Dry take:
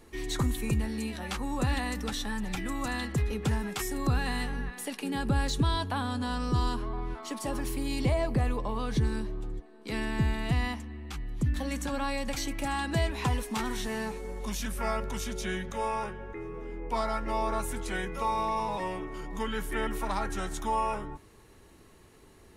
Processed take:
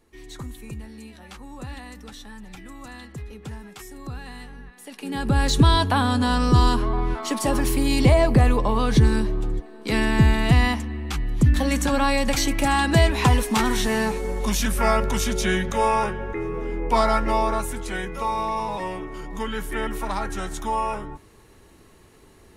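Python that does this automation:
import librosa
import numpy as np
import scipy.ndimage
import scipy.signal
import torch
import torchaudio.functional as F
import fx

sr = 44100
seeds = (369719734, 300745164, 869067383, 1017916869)

y = fx.gain(x, sr, db=fx.line((4.79, -7.5), (5.11, 3.0), (5.61, 11.0), (17.18, 11.0), (17.75, 4.0)))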